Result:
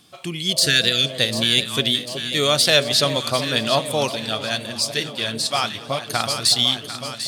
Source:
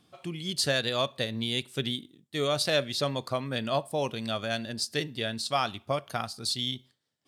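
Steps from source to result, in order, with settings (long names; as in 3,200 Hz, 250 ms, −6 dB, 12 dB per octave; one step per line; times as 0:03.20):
de-essing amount 55%
high-shelf EQ 2,100 Hz +10 dB
delay that swaps between a low-pass and a high-pass 373 ms, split 860 Hz, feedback 78%, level −9 dB
0:00.53–0:01.11: healed spectral selection 500–1,300 Hz after
0:04.09–0:06.10: flanger 2 Hz, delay 1.3 ms, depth 8.1 ms, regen −53%
feedback echo with a swinging delay time 222 ms, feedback 64%, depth 207 cents, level −23 dB
level +6.5 dB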